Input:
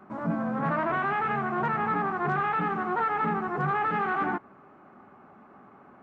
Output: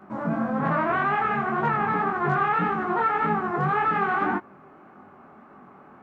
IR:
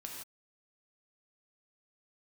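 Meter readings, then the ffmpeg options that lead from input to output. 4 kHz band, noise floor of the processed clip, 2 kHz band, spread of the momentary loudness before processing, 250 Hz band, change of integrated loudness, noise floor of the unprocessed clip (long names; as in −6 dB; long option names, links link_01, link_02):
can't be measured, −51 dBFS, +3.5 dB, 3 LU, +3.5 dB, +3.5 dB, −54 dBFS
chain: -af "flanger=delay=19:depth=7.3:speed=1.8,volume=6.5dB"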